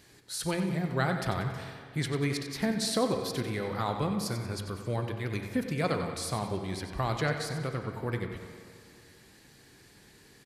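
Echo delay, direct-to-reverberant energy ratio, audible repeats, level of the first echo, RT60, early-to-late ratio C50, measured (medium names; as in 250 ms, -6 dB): 93 ms, 4.0 dB, 2, -10.5 dB, 2.2 s, 5.0 dB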